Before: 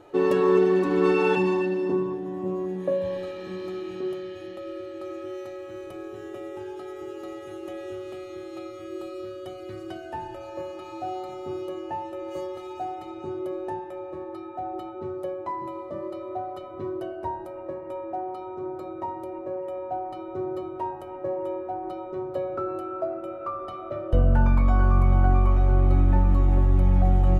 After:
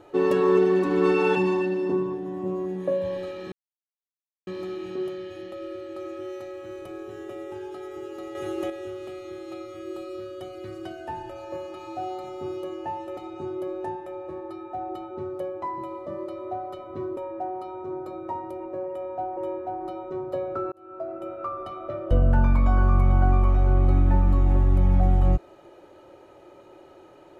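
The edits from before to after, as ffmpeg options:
-filter_complex "[0:a]asplit=8[s0][s1][s2][s3][s4][s5][s6][s7];[s0]atrim=end=3.52,asetpts=PTS-STARTPTS,afade=t=out:st=3.516:d=0.004:c=hsin,apad=pad_dur=0.95[s8];[s1]atrim=start=3.52:end=7.402,asetpts=PTS-STARTPTS,afade=t=in:d=0.004:c=hsin[s9];[s2]atrim=start=7.398:end=7.752,asetpts=PTS-STARTPTS,volume=2.24[s10];[s3]atrim=start=7.748:end=12.222[s11];[s4]atrim=start=13.008:end=17.012[s12];[s5]atrim=start=17.898:end=20.102[s13];[s6]atrim=start=21.388:end=22.74,asetpts=PTS-STARTPTS,afade=t=out:st=1.348:d=0.004:c=hsin[s14];[s7]atrim=start=22.74,asetpts=PTS-STARTPTS,afade=t=in:d=0.54[s15];[s8][s9]concat=n=2:v=0:a=1[s16];[s16][s10]acrossfade=d=0.004:c1=hsin:c2=hsin[s17];[s17][s11]acrossfade=d=0.004:c1=hsin:c2=hsin[s18];[s18][s12]acrossfade=d=0.004:c1=hsin:c2=hsin[s19];[s19][s13]acrossfade=d=0.004:c1=hsin:c2=hsin[s20];[s14][s15]concat=n=2:v=0:a=1[s21];[s20][s21]acrossfade=d=0.004:c1=hsin:c2=hsin"

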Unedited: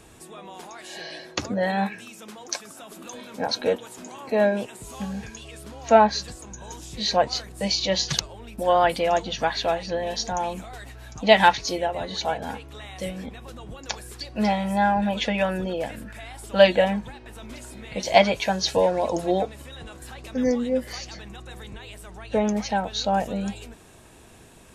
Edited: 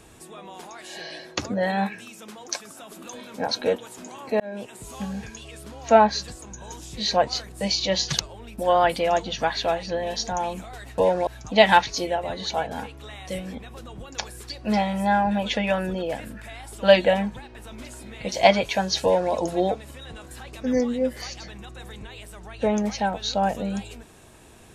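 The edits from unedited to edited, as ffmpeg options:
-filter_complex "[0:a]asplit=4[s0][s1][s2][s3];[s0]atrim=end=4.4,asetpts=PTS-STARTPTS,afade=t=out:st=4.396:d=0.004:c=hsin[s4];[s1]atrim=start=4.4:end=10.982,asetpts=PTS-STARTPTS,afade=t=in:d=0.39[s5];[s2]atrim=start=18.748:end=19.042[s6];[s3]atrim=start=10.978[s7];[s4][s5]concat=n=2:v=0:a=1[s8];[s8][s6]acrossfade=d=0.004:c1=hsin:c2=hsin[s9];[s9][s7]acrossfade=d=0.004:c1=hsin:c2=hsin"

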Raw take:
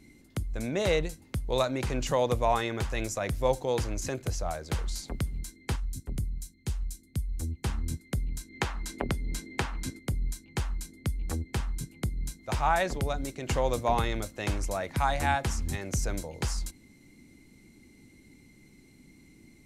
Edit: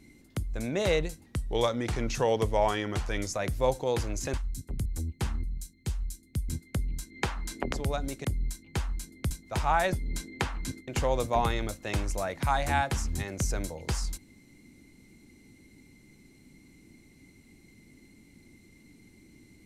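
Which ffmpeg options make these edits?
-filter_complex "[0:a]asplit=12[s0][s1][s2][s3][s4][s5][s6][s7][s8][s9][s10][s11];[s0]atrim=end=1.264[s12];[s1]atrim=start=1.26:end=3.14,asetpts=PTS-STARTPTS,asetrate=40131,aresample=44100[s13];[s2]atrim=start=3.136:end=4.152[s14];[s3]atrim=start=5.718:end=6.242[s15];[s4]atrim=start=7.288:end=7.872[s16];[s5]atrim=start=6.238:end=7.292[s17];[s6]atrim=start=7.868:end=9.112[s18];[s7]atrim=start=12.888:end=13.412[s19];[s8]atrim=start=10.058:end=11.122[s20];[s9]atrim=start=12.268:end=12.892[s21];[s10]atrim=start=9.108:end=10.062[s22];[s11]atrim=start=13.408[s23];[s12][s13]acrossfade=d=0.004:c1=hsin:c2=hsin[s24];[s24][s14]acrossfade=d=0.004:c1=hsin:c2=hsin[s25];[s25][s15]acrossfade=d=0.004:c1=hsin:c2=hsin[s26];[s26][s16]acrossfade=d=0.004:c1=hsin:c2=hsin[s27];[s27][s17]acrossfade=d=0.004:c1=hsin:c2=hsin[s28];[s28][s18]acrossfade=d=0.004:c1=hsin:c2=hsin[s29];[s29][s19]acrossfade=d=0.004:c1=hsin:c2=hsin[s30];[s30][s20]acrossfade=d=0.004:c1=hsin:c2=hsin[s31];[s31][s21]acrossfade=d=0.004:c1=hsin:c2=hsin[s32];[s32][s22]acrossfade=d=0.004:c1=hsin:c2=hsin[s33];[s33][s23]acrossfade=d=0.004:c1=hsin:c2=hsin"

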